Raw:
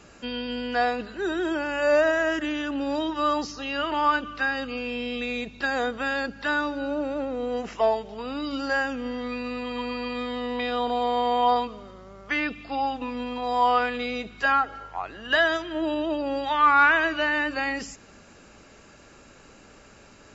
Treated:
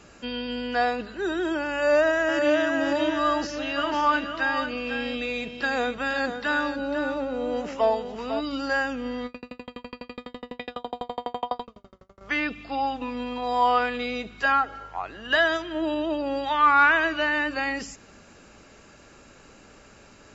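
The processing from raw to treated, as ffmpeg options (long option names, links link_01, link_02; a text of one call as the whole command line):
ffmpeg -i in.wav -filter_complex "[0:a]asplit=2[link_01][link_02];[link_02]afade=type=in:start_time=1.74:duration=0.01,afade=type=out:start_time=2.64:duration=0.01,aecho=0:1:540|1080|1620|2160|2700|3240:0.707946|0.318576|0.143359|0.0645116|0.0290302|0.0130636[link_03];[link_01][link_03]amix=inputs=2:normalize=0,asplit=3[link_04][link_05][link_06];[link_04]afade=type=out:start_time=3.76:duration=0.02[link_07];[link_05]aecho=1:1:499:0.398,afade=type=in:start_time=3.76:duration=0.02,afade=type=out:start_time=8.39:duration=0.02[link_08];[link_06]afade=type=in:start_time=8.39:duration=0.02[link_09];[link_07][link_08][link_09]amix=inputs=3:normalize=0,asettb=1/sr,asplit=3[link_10][link_11][link_12];[link_10]atrim=end=9.264[link_13];[link_11]atrim=start=9.26:end=12.21,asetpts=PTS-STARTPTS,afade=type=in:duration=0.004:curve=qsin,afade=type=out:start_time=2.946:duration=0.004:curve=qsin,aeval=exprs='val(0)*pow(10,-39*if(lt(mod(12*n/s,1),2*abs(12)/1000),1-mod(12*n/s,1)/(2*abs(12)/1000),(mod(12*n/s,1)-2*abs(12)/1000)/(1-2*abs(12)/1000))/20)':channel_layout=same[link_14];[link_12]atrim=start=12.206[link_15];[link_13][link_14]acrossfade=duration=0.004:curve1=hsin:curve2=qsin[link_16];[link_16][link_15]acrossfade=duration=0.004:curve1=qsin:curve2=hsin" out.wav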